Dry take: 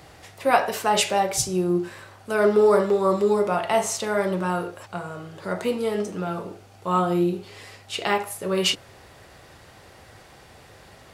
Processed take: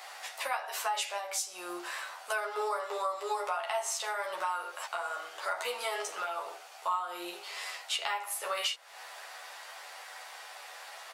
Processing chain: high-pass 720 Hz 24 dB/octave; compression 16:1, threshold -35 dBFS, peak gain reduction 21 dB; doubling 12 ms -2 dB; trim +3 dB

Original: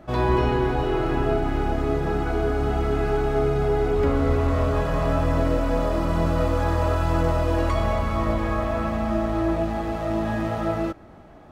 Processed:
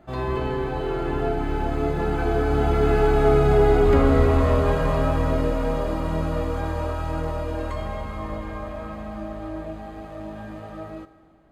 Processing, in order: Doppler pass-by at 3.61 s, 13 m/s, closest 14 m; band-stop 5.6 kHz, Q 7.2; Schroeder reverb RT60 1.9 s, combs from 31 ms, DRR 14 dB; trim +5 dB

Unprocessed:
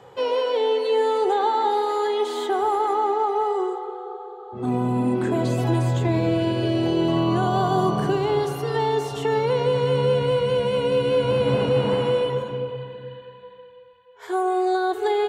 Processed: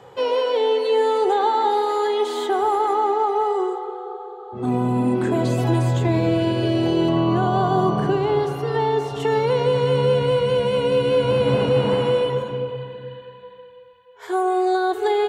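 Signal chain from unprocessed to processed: 7.09–9.20 s: treble shelf 4.8 kHz -11 dB; trim +2 dB

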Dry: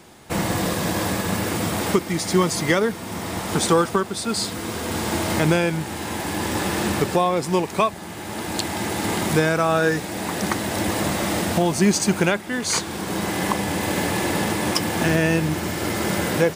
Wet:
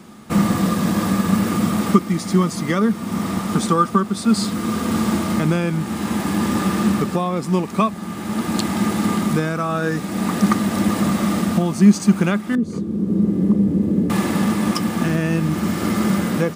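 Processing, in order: 12.55–14.10 s: FFT filter 450 Hz 0 dB, 760 Hz -19 dB, 1.5 kHz -24 dB; gain riding within 3 dB 0.5 s; small resonant body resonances 210/1200 Hz, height 15 dB, ringing for 45 ms; trim -3.5 dB

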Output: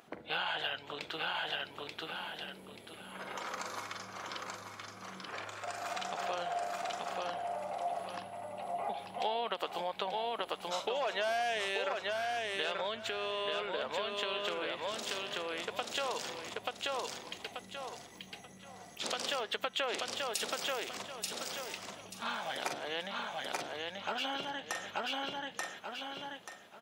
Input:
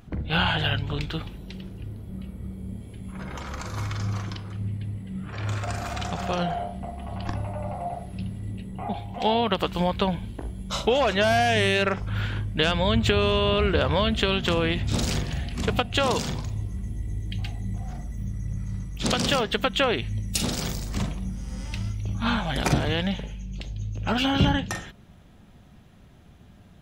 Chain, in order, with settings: feedback delay 884 ms, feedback 26%, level -3.5 dB; compression 6:1, threshold -30 dBFS, peak gain reduction 14.5 dB; Chebyshev high-pass 560 Hz, order 2

